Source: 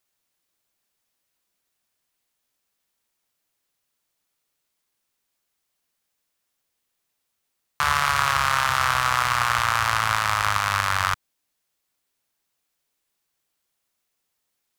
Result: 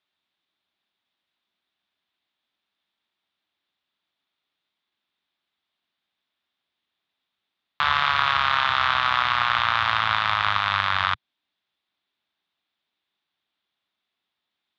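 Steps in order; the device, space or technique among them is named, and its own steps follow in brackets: guitar cabinet (cabinet simulation 100–3800 Hz, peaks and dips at 130 Hz -8 dB, 490 Hz -9 dB, 3.6 kHz +9 dB)

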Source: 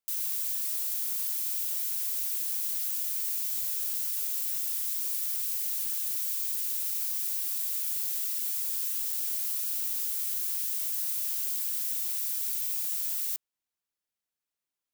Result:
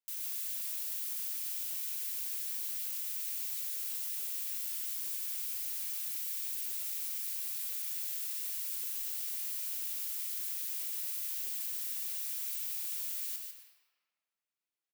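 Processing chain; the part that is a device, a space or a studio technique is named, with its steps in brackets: PA in a hall (high-pass 130 Hz 12 dB/octave; peaking EQ 2.4 kHz +4.5 dB 1.4 oct; delay 149 ms -6 dB; reverberation RT60 1.7 s, pre-delay 86 ms, DRR 5 dB); trim -8 dB

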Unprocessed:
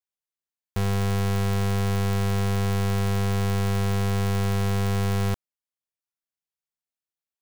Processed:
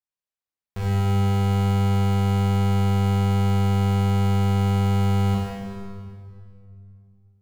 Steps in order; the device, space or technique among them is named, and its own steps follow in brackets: swimming-pool hall (reverberation RT60 2.4 s, pre-delay 19 ms, DRR -6 dB; treble shelf 5.5 kHz -6.5 dB); trim -6 dB

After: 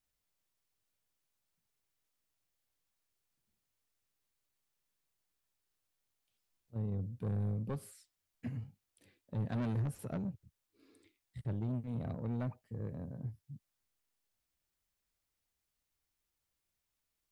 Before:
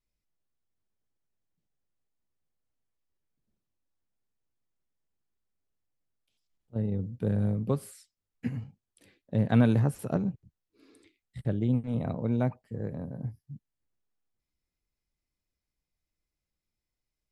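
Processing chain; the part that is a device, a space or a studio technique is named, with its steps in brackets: open-reel tape (saturation -26 dBFS, distortion -8 dB; peaking EQ 94 Hz +4.5 dB 0.9 oct; white noise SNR 44 dB); trim -7 dB

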